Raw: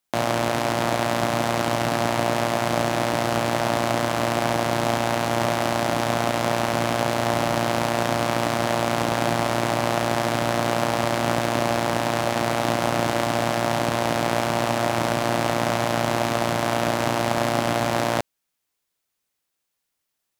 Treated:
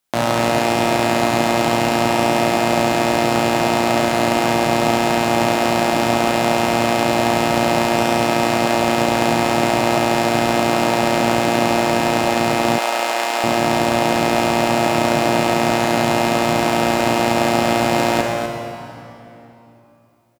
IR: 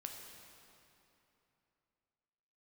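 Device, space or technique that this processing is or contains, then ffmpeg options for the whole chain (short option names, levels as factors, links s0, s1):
cave: -filter_complex "[0:a]aecho=1:1:249:0.335[s0];[1:a]atrim=start_sample=2205[s1];[s0][s1]afir=irnorm=-1:irlink=0,asettb=1/sr,asplit=3[s2][s3][s4];[s2]atrim=end=12.784[s5];[s3]atrim=start=12.78:end=13.44,asetpts=PTS-STARTPTS,afade=t=in:d=0.004:c=qsin,afade=t=out:st=0.656:d=0.004:c=qsin,highpass=620[s6];[s4]atrim=start=13.436[s7];[s5][s6]acrossfade=d=0.004:c1=hsin:c2=qsin[s8];[s8][s7]acrossfade=d=0.004:c1=qsin:c2=hsin,volume=2.66"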